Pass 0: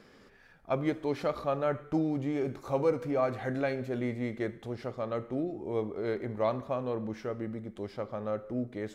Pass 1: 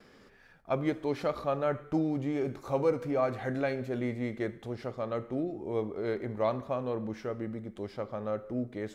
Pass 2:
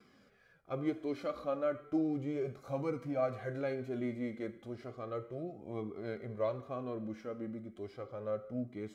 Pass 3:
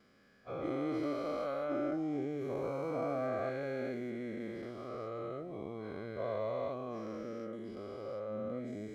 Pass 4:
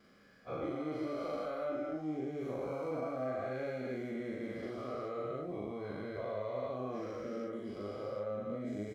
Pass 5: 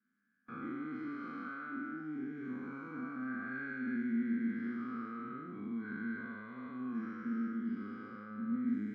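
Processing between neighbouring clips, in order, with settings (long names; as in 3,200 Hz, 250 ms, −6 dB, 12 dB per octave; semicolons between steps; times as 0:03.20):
noise gate with hold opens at −49 dBFS
flanger 0.34 Hz, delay 0.8 ms, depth 3.1 ms, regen −35%; harmonic and percussive parts rebalanced percussive −5 dB; notch comb filter 900 Hz
every bin's largest magnitude spread in time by 480 ms; level −8 dB
downward compressor, threshold −38 dBFS, peak gain reduction 7 dB; double-tracking delay 39 ms −2 dB; level +1 dB
peak hold with a decay on every bin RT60 1.13 s; pair of resonant band-passes 600 Hz, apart 2.7 octaves; noise gate with hold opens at −54 dBFS; level +9 dB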